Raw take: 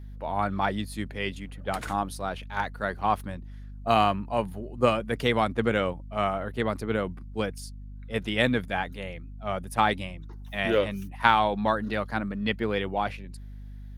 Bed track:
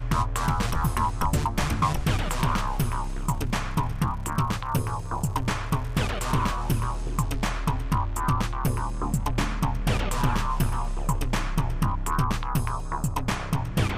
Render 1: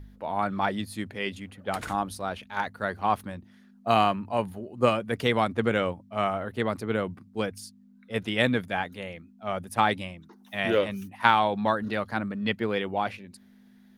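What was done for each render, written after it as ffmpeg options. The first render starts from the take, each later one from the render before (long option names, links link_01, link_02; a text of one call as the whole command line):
ffmpeg -i in.wav -af "bandreject=frequency=50:width_type=h:width=4,bandreject=frequency=100:width_type=h:width=4,bandreject=frequency=150:width_type=h:width=4" out.wav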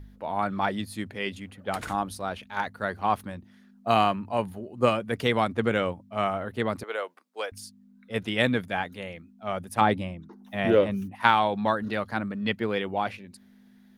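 ffmpeg -i in.wav -filter_complex "[0:a]asettb=1/sr,asplit=3[link_01][link_02][link_03];[link_01]atrim=end=6.834[link_04];[link_02]atrim=start=6.83:end=7.52,asetpts=PTS-STARTPTS,afade=type=in:duration=0.004:curve=qsin,afade=type=out:start_time=0.686:duration=0.004:curve=qsin,highpass=frequency=490:width=0.5412,highpass=frequency=490:width=1.3066[link_05];[link_03]atrim=start=7.516[link_06];[link_04][link_05]acrossfade=duration=0.004:curve1=hsin:curve2=qsin[link_07];[link_07][link_06]acrossfade=duration=0.004:curve1=qsin:curve2=hsin,asettb=1/sr,asplit=3[link_08][link_09][link_10];[link_08]atrim=end=9.814[link_11];[link_09]atrim=start=9.81:end=11.15,asetpts=PTS-STARTPTS,afade=type=in:duration=0.004:curve=qsin,afade=type=out:start_time=1.336:duration=0.004:curve=qsin,tiltshelf=frequency=1200:gain=5.5[link_12];[link_10]atrim=start=11.146[link_13];[link_11][link_12]acrossfade=duration=0.004:curve1=hsin:curve2=qsin[link_14];[link_14][link_13]acrossfade=duration=0.004:curve1=qsin:curve2=hsin" out.wav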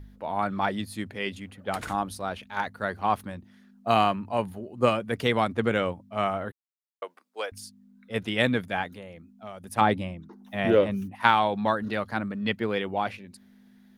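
ffmpeg -i in.wav -filter_complex "[0:a]asettb=1/sr,asplit=3[link_01][link_02][link_03];[link_01]atrim=end=8.924[link_04];[link_02]atrim=start=8.92:end=9.64,asetpts=PTS-STARTPTS,afade=type=in:duration=0.004:curve=qsin,afade=type=out:start_time=0.716:duration=0.004:curve=qsin,acrossover=split=1400|3800[link_05][link_06][link_07];[link_05]acompressor=threshold=-40dB:ratio=4[link_08];[link_06]acompressor=threshold=-57dB:ratio=4[link_09];[link_07]acompressor=threshold=-59dB:ratio=4[link_10];[link_08][link_09][link_10]amix=inputs=3:normalize=0[link_11];[link_03]atrim=start=9.636[link_12];[link_04][link_11]acrossfade=duration=0.004:curve1=hsin:curve2=qsin[link_13];[link_13][link_12]acrossfade=duration=0.004:curve1=qsin:curve2=hsin,asplit=3[link_14][link_15][link_16];[link_14]atrim=end=6.52,asetpts=PTS-STARTPTS,afade=type=out:start_time=6.516:duration=0.004:curve=hsin[link_17];[link_15]atrim=start=6.52:end=7.02,asetpts=PTS-STARTPTS,volume=0[link_18];[link_16]atrim=start=7.02,asetpts=PTS-STARTPTS,afade=type=in:duration=0.004:curve=hsin[link_19];[link_17][link_18][link_19]concat=n=3:v=0:a=1" out.wav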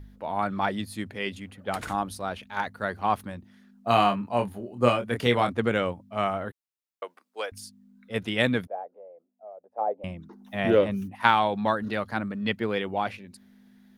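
ffmpeg -i in.wav -filter_complex "[0:a]asettb=1/sr,asplit=3[link_01][link_02][link_03];[link_01]atrim=end=3.884[link_04];[link_02]atrim=start=3.88:end=5.5,asetpts=PTS-STARTPTS,afade=type=in:duration=0.004:curve=qsin,afade=type=out:start_time=1.616:duration=0.004:curve=qsin,asplit=2[link_05][link_06];[link_06]adelay=25,volume=-6dB[link_07];[link_05][link_07]amix=inputs=2:normalize=0,atrim=end_sample=71442[link_08];[link_03]atrim=start=5.496[link_09];[link_04][link_08]acrossfade=duration=0.004:curve1=hsin:curve2=qsin[link_10];[link_10][link_09]acrossfade=duration=0.004:curve1=qsin:curve2=hsin,asettb=1/sr,asplit=3[link_11][link_12][link_13];[link_11]atrim=end=8.674[link_14];[link_12]atrim=start=8.67:end=10.04,asetpts=PTS-STARTPTS,afade=type=in:duration=0.004:curve=qsin,afade=type=out:start_time=1.366:duration=0.004:curve=qsin,asuperpass=centerf=590:order=4:qfactor=2[link_15];[link_13]atrim=start=10.036[link_16];[link_14][link_15]acrossfade=duration=0.004:curve1=hsin:curve2=qsin[link_17];[link_17][link_16]acrossfade=duration=0.004:curve1=qsin:curve2=hsin" out.wav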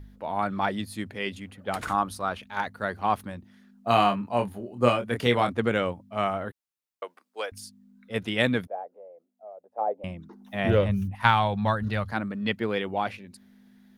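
ffmpeg -i in.wav -filter_complex "[0:a]asettb=1/sr,asplit=3[link_01][link_02][link_03];[link_01]atrim=end=1.834[link_04];[link_02]atrim=start=1.83:end=2.38,asetpts=PTS-STARTPTS,afade=type=in:duration=0.004:curve=qsin,afade=type=out:start_time=0.546:duration=0.004:curve=qsin,equalizer=frequency=1200:width=2.3:gain=7.5[link_05];[link_03]atrim=start=2.376[link_06];[link_04][link_05]acrossfade=duration=0.004:curve1=hsin:curve2=qsin[link_07];[link_07][link_06]acrossfade=duration=0.004:curve1=qsin:curve2=hsin,asplit=3[link_08][link_09][link_10];[link_08]afade=type=out:start_time=10.68:duration=0.02[link_11];[link_09]asubboost=boost=10.5:cutoff=91,afade=type=in:start_time=10.68:duration=0.02,afade=type=out:start_time=12.11:duration=0.02[link_12];[link_10]afade=type=in:start_time=12.11:duration=0.02[link_13];[link_11][link_12][link_13]amix=inputs=3:normalize=0" out.wav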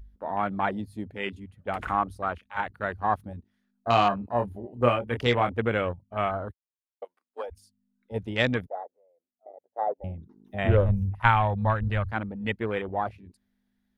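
ffmpeg -i in.wav -af "afwtdn=0.0224,asubboost=boost=6:cutoff=68" out.wav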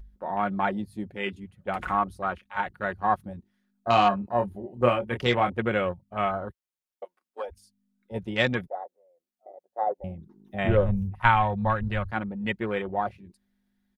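ffmpeg -i in.wav -af "aecho=1:1:5.5:0.41" out.wav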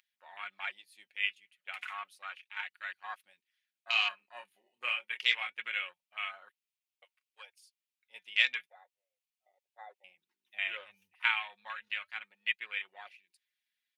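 ffmpeg -i in.wav -af "highpass=frequency=2500:width_type=q:width=2.7,flanger=delay=0:depth=4.8:regen=-71:speed=0.3:shape=sinusoidal" out.wav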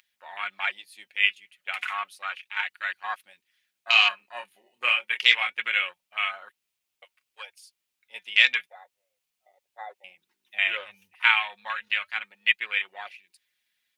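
ffmpeg -i in.wav -af "volume=10.5dB,alimiter=limit=-2dB:level=0:latency=1" out.wav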